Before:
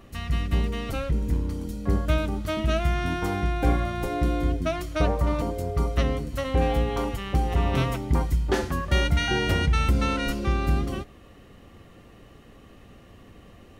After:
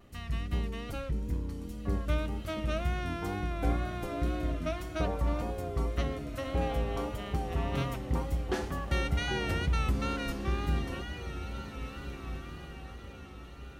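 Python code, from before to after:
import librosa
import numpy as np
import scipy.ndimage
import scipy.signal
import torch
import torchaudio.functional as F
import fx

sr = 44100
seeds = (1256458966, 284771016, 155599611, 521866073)

y = fx.echo_diffused(x, sr, ms=1813, feedback_pct=40, wet_db=-9.5)
y = fx.wow_flutter(y, sr, seeds[0], rate_hz=2.1, depth_cents=51.0)
y = F.gain(torch.from_numpy(y), -8.0).numpy()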